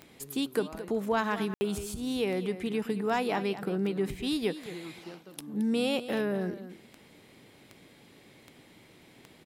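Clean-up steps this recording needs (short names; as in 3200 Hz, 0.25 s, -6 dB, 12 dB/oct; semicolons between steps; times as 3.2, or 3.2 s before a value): clip repair -18 dBFS; de-click; room tone fill 1.54–1.61; inverse comb 0.221 s -13 dB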